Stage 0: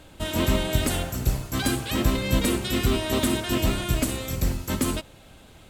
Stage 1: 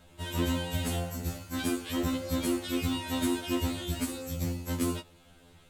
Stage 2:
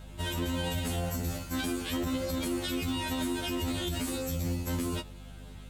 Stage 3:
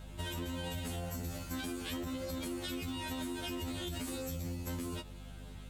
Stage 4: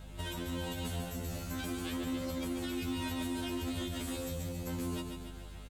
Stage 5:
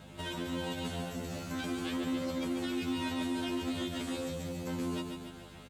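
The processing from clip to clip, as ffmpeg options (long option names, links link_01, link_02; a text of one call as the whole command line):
ffmpeg -i in.wav -af "afftfilt=real='re*2*eq(mod(b,4),0)':imag='im*2*eq(mod(b,4),0)':win_size=2048:overlap=0.75,volume=-5.5dB" out.wav
ffmpeg -i in.wav -af "alimiter=level_in=5dB:limit=-24dB:level=0:latency=1:release=51,volume=-5dB,aeval=exprs='val(0)+0.00316*(sin(2*PI*50*n/s)+sin(2*PI*2*50*n/s)/2+sin(2*PI*3*50*n/s)/3+sin(2*PI*4*50*n/s)/4+sin(2*PI*5*50*n/s)/5)':channel_layout=same,volume=5dB" out.wav
ffmpeg -i in.wav -af "acompressor=threshold=-34dB:ratio=6,volume=-2dB" out.wav
ffmpeg -i in.wav -filter_complex "[0:a]acrossover=split=2600[link_01][link_02];[link_02]alimiter=level_in=13.5dB:limit=-24dB:level=0:latency=1:release=120,volume=-13.5dB[link_03];[link_01][link_03]amix=inputs=2:normalize=0,aecho=1:1:143|286|429|572|715|858|1001:0.501|0.281|0.157|0.088|0.0493|0.0276|0.0155" out.wav
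ffmpeg -i in.wav -filter_complex "[0:a]acrossover=split=8500[link_01][link_02];[link_02]acompressor=threshold=-55dB:ratio=4:attack=1:release=60[link_03];[link_01][link_03]amix=inputs=2:normalize=0,highpass=130,equalizer=frequency=15000:width_type=o:width=1.4:gain=-6.5,volume=3dB" out.wav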